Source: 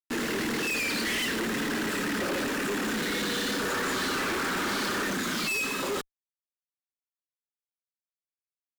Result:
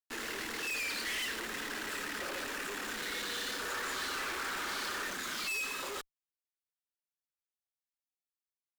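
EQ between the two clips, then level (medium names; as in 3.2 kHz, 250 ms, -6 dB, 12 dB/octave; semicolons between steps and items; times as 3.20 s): peaking EQ 190 Hz -13.5 dB 2.2 oct; -6.0 dB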